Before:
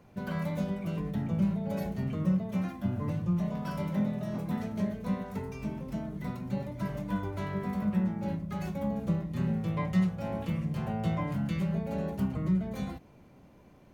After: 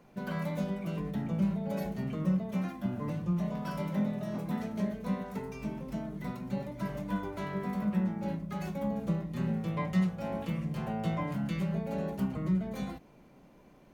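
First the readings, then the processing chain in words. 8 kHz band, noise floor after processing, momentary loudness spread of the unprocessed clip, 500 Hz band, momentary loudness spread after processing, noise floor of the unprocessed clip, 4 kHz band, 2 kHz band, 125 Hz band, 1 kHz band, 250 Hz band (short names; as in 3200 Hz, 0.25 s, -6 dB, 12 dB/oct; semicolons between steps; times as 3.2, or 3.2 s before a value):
n/a, -58 dBFS, 7 LU, 0.0 dB, 7 LU, -56 dBFS, 0.0 dB, 0.0 dB, -2.5 dB, 0.0 dB, -1.5 dB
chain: bell 91 Hz -14.5 dB 0.62 oct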